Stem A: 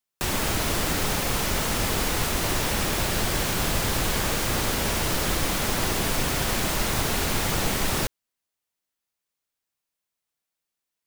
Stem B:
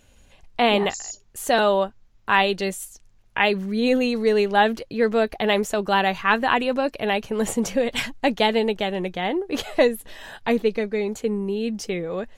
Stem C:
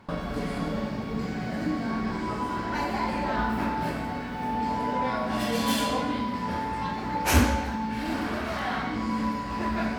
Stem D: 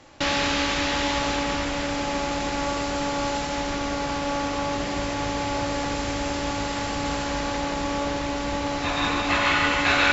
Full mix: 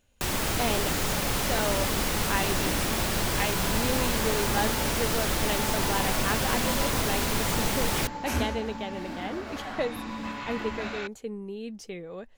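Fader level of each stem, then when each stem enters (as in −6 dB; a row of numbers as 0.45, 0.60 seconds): −2.5, −11.5, −8.5, −18.0 decibels; 0.00, 0.00, 1.00, 0.95 seconds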